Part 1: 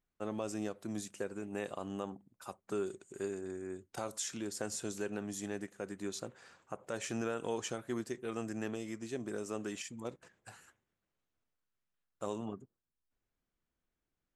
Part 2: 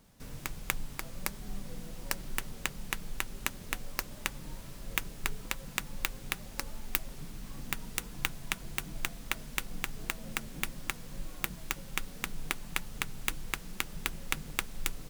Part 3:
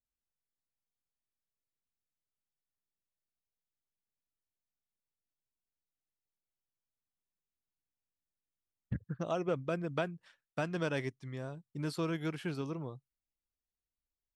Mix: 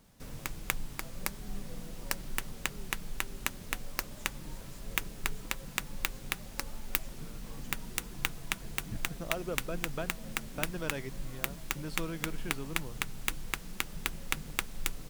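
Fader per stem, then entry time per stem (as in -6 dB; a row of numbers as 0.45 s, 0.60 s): -20.0 dB, 0.0 dB, -4.0 dB; 0.00 s, 0.00 s, 0.00 s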